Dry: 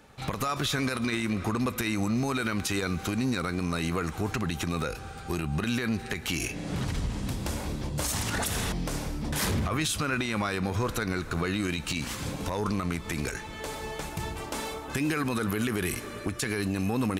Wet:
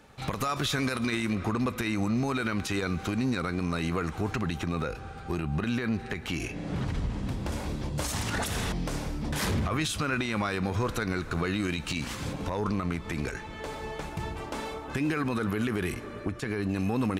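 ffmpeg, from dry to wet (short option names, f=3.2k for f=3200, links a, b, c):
-af "asetnsamples=n=441:p=0,asendcmd='1.35 lowpass f 4000;4.58 lowpass f 2300;7.52 lowpass f 5700;12.33 lowpass f 2800;15.94 lowpass f 1500;16.69 lowpass f 4000',lowpass=f=11k:p=1"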